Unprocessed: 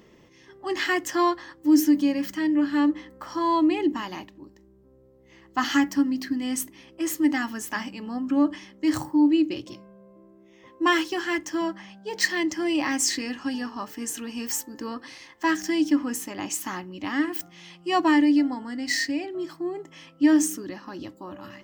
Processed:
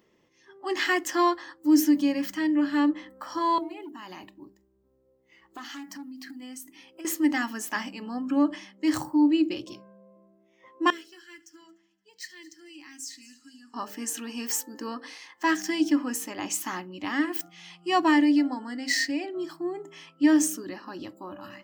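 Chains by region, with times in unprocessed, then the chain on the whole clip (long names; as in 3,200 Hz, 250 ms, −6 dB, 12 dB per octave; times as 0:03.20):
0:03.58–0:07.05: one scale factor per block 7 bits + hard clipping −19 dBFS + downward compressor 20 to 1, threshold −36 dBFS
0:10.90–0:13.74: guitar amp tone stack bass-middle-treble 6-0-2 + echo machine with several playback heads 74 ms, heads first and third, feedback 56%, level −18.5 dB
whole clip: noise reduction from a noise print of the clip's start 10 dB; low-shelf EQ 140 Hz −8.5 dB; hum removal 66.64 Hz, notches 10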